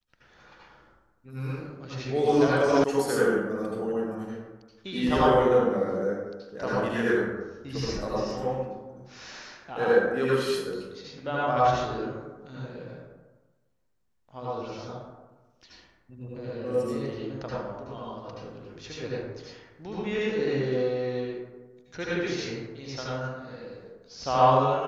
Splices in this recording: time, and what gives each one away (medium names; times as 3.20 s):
2.84 s: sound stops dead